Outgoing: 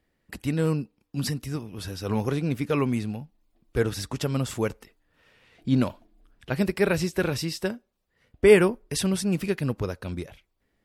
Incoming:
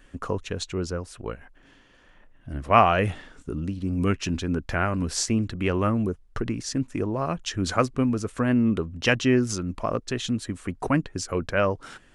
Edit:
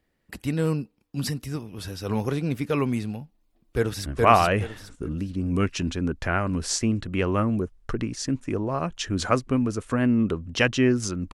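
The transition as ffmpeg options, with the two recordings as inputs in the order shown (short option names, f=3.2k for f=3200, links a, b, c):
-filter_complex "[0:a]apad=whole_dur=11.33,atrim=end=11.33,atrim=end=4.062[a];[1:a]atrim=start=2.528:end=9.8[b];[a][b]acrossfade=d=0.004:c1=hsin:c2=hsin,asplit=2[c][d];[d]afade=t=in:st=3.76:d=0.01,afade=t=out:st=4.06:d=0.01,aecho=0:1:420|840|1260|1680:0.944061|0.236015|0.0590038|0.014751[e];[c][e]amix=inputs=2:normalize=0"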